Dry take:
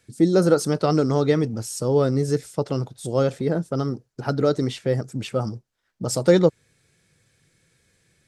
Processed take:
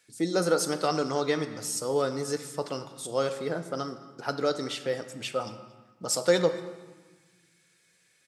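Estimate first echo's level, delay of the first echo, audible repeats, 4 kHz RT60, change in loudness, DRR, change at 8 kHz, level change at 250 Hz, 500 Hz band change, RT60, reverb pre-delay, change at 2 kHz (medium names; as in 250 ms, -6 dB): -22.0 dB, 228 ms, 1, 1.0 s, -7.0 dB, 7.5 dB, +0.5 dB, -10.5 dB, -6.5 dB, 1.3 s, 4 ms, -0.5 dB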